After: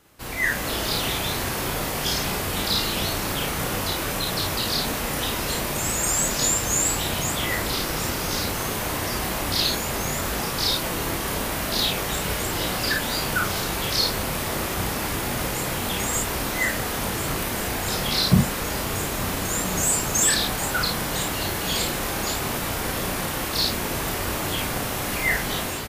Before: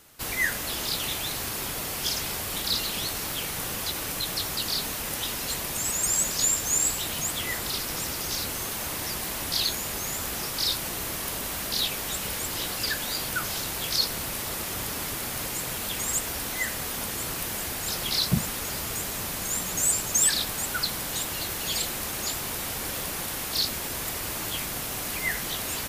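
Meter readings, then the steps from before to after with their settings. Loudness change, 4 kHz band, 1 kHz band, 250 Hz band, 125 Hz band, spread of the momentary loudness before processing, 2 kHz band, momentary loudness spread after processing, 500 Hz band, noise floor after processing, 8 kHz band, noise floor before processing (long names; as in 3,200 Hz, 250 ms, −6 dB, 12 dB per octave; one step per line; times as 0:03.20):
+3.5 dB, +3.5 dB, +8.0 dB, +9.0 dB, +9.0 dB, 7 LU, +6.0 dB, 5 LU, +9.0 dB, −28 dBFS, +1.5 dB, −33 dBFS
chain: high-shelf EQ 2,700 Hz −9 dB
automatic gain control gain up to 7 dB
ambience of single reflections 33 ms −3.5 dB, 54 ms −5 dB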